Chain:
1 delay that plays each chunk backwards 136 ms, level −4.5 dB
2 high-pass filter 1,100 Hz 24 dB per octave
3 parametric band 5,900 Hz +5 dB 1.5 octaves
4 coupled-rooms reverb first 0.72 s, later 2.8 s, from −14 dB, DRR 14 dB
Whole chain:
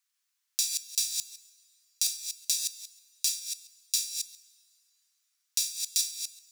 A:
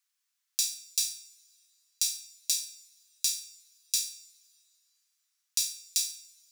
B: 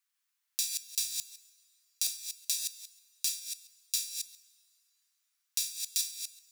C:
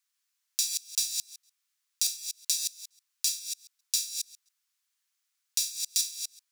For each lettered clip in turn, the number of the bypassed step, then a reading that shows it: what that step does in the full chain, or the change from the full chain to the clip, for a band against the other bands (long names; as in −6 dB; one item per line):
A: 1, change in momentary loudness spread +1 LU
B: 3, change in crest factor +2.5 dB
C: 4, change in momentary loudness spread −2 LU